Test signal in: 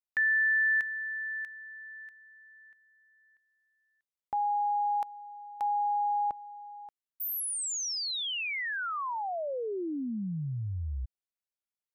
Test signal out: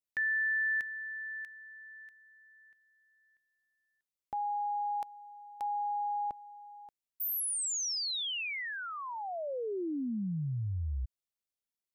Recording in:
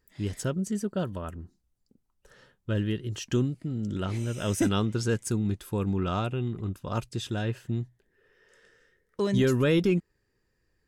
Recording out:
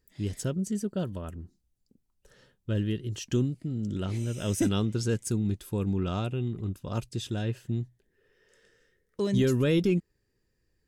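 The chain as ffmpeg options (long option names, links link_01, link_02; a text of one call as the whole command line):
ffmpeg -i in.wav -af "equalizer=frequency=1200:width_type=o:width=1.9:gain=-6.5" out.wav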